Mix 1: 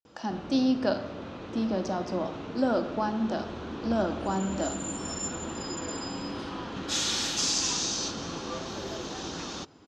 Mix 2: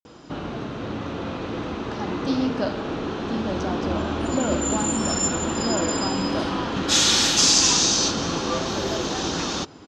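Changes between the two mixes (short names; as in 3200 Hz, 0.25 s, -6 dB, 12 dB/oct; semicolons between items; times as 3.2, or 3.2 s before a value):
speech: entry +1.75 s; background +10.5 dB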